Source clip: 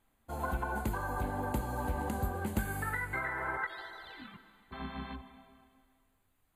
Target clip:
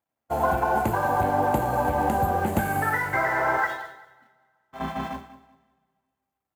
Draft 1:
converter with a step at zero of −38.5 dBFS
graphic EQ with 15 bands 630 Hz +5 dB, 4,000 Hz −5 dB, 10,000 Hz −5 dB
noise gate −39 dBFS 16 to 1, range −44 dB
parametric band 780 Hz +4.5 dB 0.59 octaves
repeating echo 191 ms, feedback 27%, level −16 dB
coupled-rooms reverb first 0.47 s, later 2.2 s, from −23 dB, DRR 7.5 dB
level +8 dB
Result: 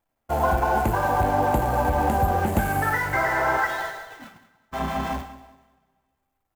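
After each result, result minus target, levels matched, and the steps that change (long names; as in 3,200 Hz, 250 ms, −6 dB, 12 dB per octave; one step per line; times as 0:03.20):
converter with a step at zero: distortion +5 dB; 125 Hz band +2.5 dB
change: converter with a step at zero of −45 dBFS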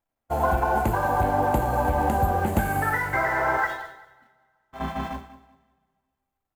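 125 Hz band +2.5 dB
add after noise gate: high-pass filter 95 Hz 12 dB per octave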